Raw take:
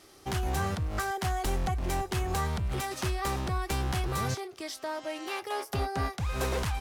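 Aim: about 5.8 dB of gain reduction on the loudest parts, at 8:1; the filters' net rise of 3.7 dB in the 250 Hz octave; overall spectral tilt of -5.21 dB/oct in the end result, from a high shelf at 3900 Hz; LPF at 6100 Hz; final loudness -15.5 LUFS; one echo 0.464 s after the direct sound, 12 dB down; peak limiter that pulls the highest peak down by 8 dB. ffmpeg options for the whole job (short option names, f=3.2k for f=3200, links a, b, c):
-af "lowpass=6.1k,equalizer=f=250:t=o:g=5.5,highshelf=f=3.9k:g=-5,acompressor=threshold=-31dB:ratio=8,alimiter=level_in=7.5dB:limit=-24dB:level=0:latency=1,volume=-7.5dB,aecho=1:1:464:0.251,volume=24.5dB"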